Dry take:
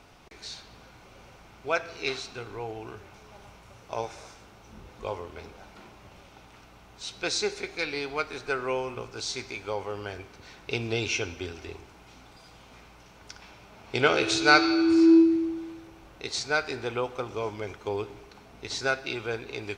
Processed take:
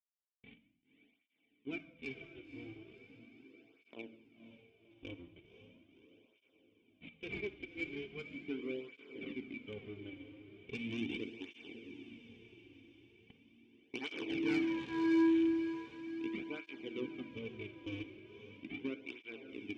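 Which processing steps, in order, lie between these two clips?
loose part that buzzes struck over −34 dBFS, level −21 dBFS
parametric band 850 Hz −11.5 dB 0.24 octaves
mains-hum notches 60/120/180/240/300/360 Hz
in parallel at −1 dB: downward compressor, threshold −37 dBFS, peak gain reduction 21 dB
on the sum: decimation without filtering 7×
dead-zone distortion −33 dBFS
formant resonators in series i
soft clipping −34.5 dBFS, distortion −5 dB
feedback delay with all-pass diffusion 529 ms, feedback 59%, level −10 dB
on a send at −10 dB: convolution reverb, pre-delay 3 ms
on the sum: through-zero flanger with one copy inverted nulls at 0.39 Hz, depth 5.1 ms
level +6.5 dB

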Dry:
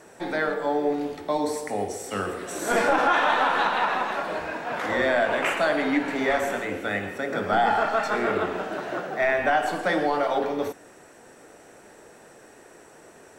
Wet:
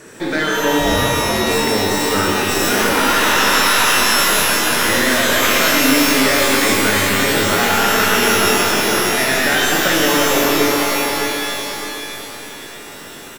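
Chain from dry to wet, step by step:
stylus tracing distortion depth 0.085 ms
parametric band 750 Hz −13 dB 0.82 octaves
brickwall limiter −20.5 dBFS, peak gain reduction 7.5 dB
on a send: repeating echo 608 ms, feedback 34%, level −8.5 dB
0:00.78–0:01.49: on the sum: ring modulation 300 Hz → 60 Hz
in parallel at +3 dB: downward compressor, threshold −28 dBFS, peak gain reduction 4.5 dB
on the sum: reverb with rising layers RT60 2.3 s, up +12 semitones, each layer −2 dB, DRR −0.5 dB
level +3.5 dB

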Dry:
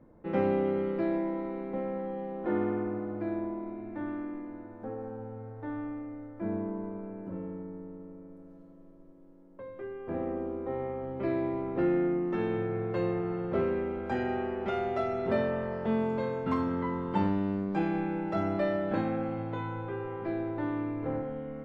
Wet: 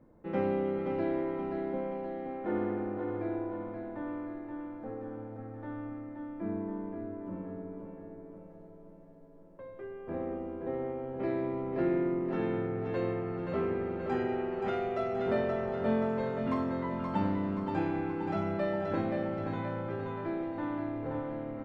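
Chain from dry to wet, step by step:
repeating echo 526 ms, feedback 52%, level −5 dB
level −3 dB

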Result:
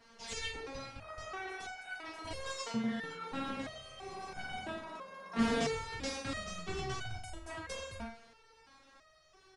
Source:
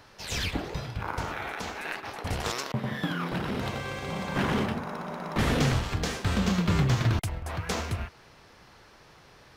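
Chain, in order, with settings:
0:04.90–0:06.46: frequency shifter +14 Hz
on a send: flutter between parallel walls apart 7.7 metres, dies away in 0.34 s
on the sum: downsampling to 22,050 Hz
step-sequenced resonator 3 Hz 230–750 Hz
level +7 dB

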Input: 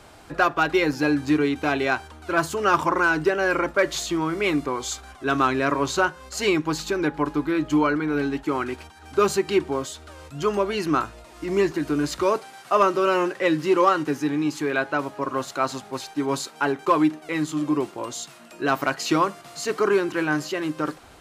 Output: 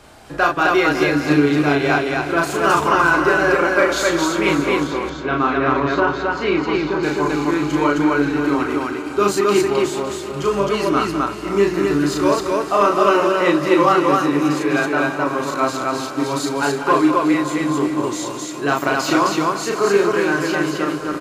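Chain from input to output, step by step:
feedback delay that plays each chunk backwards 148 ms, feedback 84%, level −13 dB
0:04.83–0:07.03: high-frequency loss of the air 260 metres
loudspeakers that aren't time-aligned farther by 12 metres −2 dB, 69 metres −11 dB, 90 metres −1 dB
level +1.5 dB

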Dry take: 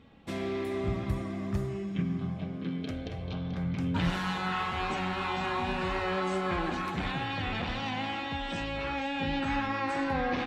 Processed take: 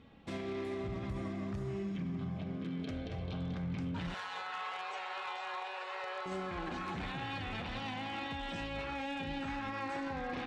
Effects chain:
brickwall limiter −29 dBFS, peak gain reduction 11 dB
0:04.14–0:06.26: Butterworth high-pass 420 Hz 72 dB per octave
tape delay 215 ms, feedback 89%, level −24 dB
wave folding −30 dBFS
low-pass filter 7,900 Hz 12 dB per octave
level −2 dB

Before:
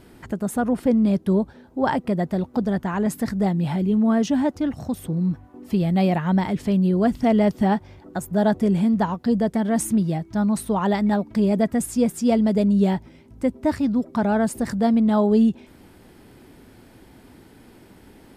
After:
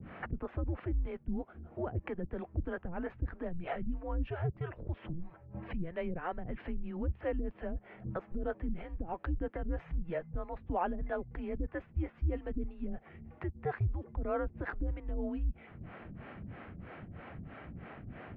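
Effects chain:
downward compressor 4 to 1, threshold −34 dBFS, peak gain reduction 16.5 dB
brickwall limiter −29 dBFS, peak gain reduction 6.5 dB
two-band tremolo in antiphase 3.1 Hz, depth 100%, crossover 460 Hz
single-sideband voice off tune −170 Hz 240–2,700 Hz
level +9 dB

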